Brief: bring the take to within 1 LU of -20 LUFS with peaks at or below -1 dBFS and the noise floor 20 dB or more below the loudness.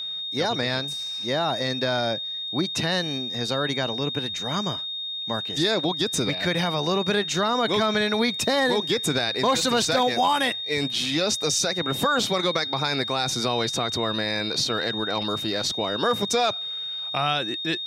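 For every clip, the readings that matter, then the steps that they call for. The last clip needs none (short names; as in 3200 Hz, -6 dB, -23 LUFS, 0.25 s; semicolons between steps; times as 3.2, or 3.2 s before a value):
steady tone 3700 Hz; tone level -29 dBFS; loudness -24.0 LUFS; peak -9.5 dBFS; loudness target -20.0 LUFS
-> notch 3700 Hz, Q 30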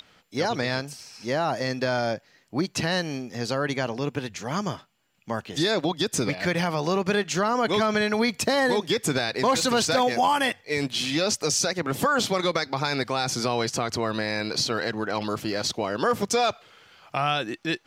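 steady tone none; loudness -25.5 LUFS; peak -10.0 dBFS; loudness target -20.0 LUFS
-> gain +5.5 dB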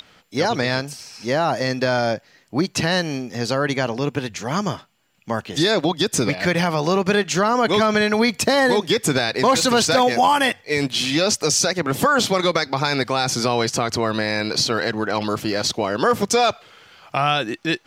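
loudness -20.0 LUFS; peak -4.5 dBFS; noise floor -55 dBFS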